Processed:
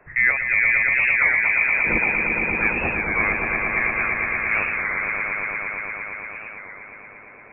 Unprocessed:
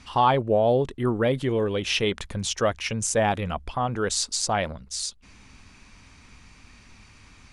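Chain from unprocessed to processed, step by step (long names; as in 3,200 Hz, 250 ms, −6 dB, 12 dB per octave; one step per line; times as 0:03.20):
Bessel high-pass filter 620 Hz, order 4
on a send: echo that builds up and dies away 115 ms, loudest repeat 5, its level −5 dB
on the sum: voice inversion scrambler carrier 2,900 Hz
wow of a warped record 33 1/3 rpm, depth 100 cents
level +2.5 dB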